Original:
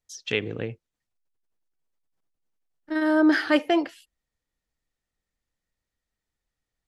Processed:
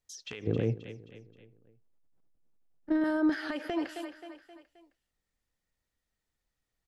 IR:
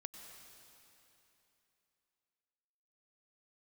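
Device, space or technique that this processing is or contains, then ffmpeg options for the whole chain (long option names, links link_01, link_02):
de-esser from a sidechain: -filter_complex "[0:a]asettb=1/sr,asplit=3[link_01][link_02][link_03];[link_01]atrim=end=0.474[link_04];[link_02]atrim=start=0.47:end=3.04,asetpts=PTS-STARTPTS,afade=type=in:duration=0.004:curve=qsin,afade=type=out:start_time=2.566:duration=0.004:curve=qsin,tiltshelf=frequency=940:gain=8[link_05];[link_03]atrim=start=3.036[link_06];[link_04][link_05]acrossfade=duration=0.004:curve1=hsin:curve2=qsin[link_07];[link_07][link_06]acrossfade=duration=0.004:curve1=qsin:curve2=hsin,aecho=1:1:264|528|792|1056:0.112|0.0527|0.0248|0.0116,asplit=2[link_08][link_09];[link_09]highpass=frequency=4700:poles=1,apad=whole_len=349905[link_10];[link_08][link_10]sidechaincompress=threshold=-41dB:ratio=12:attack=0.57:release=89"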